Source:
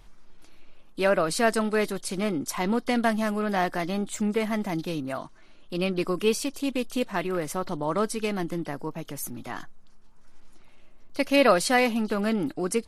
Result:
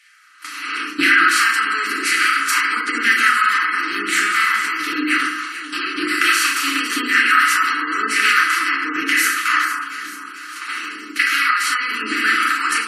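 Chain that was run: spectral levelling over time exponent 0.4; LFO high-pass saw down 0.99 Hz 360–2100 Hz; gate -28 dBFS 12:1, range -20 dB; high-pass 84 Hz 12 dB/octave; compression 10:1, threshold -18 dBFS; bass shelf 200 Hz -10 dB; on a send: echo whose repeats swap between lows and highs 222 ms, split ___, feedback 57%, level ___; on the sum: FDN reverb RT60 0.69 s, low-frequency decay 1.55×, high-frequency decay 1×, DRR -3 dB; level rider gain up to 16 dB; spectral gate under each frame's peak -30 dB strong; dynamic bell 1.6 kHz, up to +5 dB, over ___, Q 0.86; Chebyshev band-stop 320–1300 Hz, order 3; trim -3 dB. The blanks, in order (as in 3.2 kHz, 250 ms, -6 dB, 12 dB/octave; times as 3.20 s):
1.4 kHz, -6 dB, -24 dBFS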